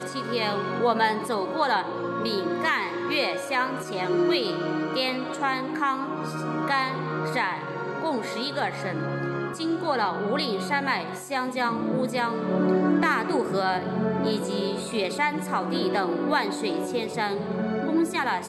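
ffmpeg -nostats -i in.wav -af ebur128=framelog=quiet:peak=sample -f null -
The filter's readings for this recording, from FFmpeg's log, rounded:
Integrated loudness:
  I:         -26.2 LUFS
  Threshold: -36.1 LUFS
Loudness range:
  LRA:         2.9 LU
  Threshold: -46.2 LUFS
  LRA low:   -27.8 LUFS
  LRA high:  -24.9 LUFS
Sample peak:
  Peak:       -9.7 dBFS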